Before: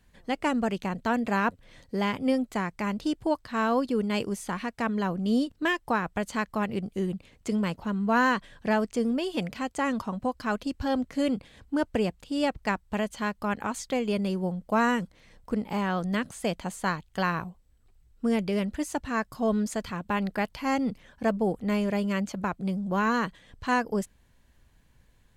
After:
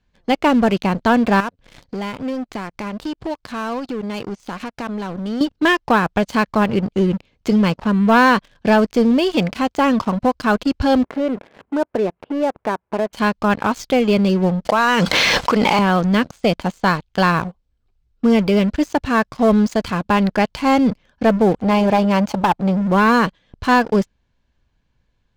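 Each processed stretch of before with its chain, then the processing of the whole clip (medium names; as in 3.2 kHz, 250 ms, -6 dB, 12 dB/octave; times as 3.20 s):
1.40–5.41 s: compression 2.5:1, threshold -45 dBFS + waveshaping leveller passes 1
11.04–13.13 s: companding laws mixed up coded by mu + compression 2:1, threshold -38 dBFS + cabinet simulation 190–2100 Hz, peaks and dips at 390 Hz +7 dB, 630 Hz +6 dB, 960 Hz +5 dB
14.65–15.79 s: high-pass 1.1 kHz 6 dB/octave + level flattener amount 100%
21.59–22.82 s: peaking EQ 850 Hz +14.5 dB 0.45 oct + hard clipper -20 dBFS + transformer saturation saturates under 270 Hz
whole clip: low-pass 5.9 kHz 24 dB/octave; band-stop 1.9 kHz, Q 11; waveshaping leveller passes 3; trim +1.5 dB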